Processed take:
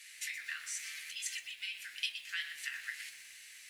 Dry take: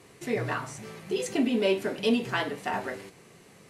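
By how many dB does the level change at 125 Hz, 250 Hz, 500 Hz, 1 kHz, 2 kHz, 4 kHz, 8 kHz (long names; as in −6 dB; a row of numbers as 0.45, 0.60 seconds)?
below −40 dB, below −40 dB, below −40 dB, −27.0 dB, −4.5 dB, −3.5 dB, +1.5 dB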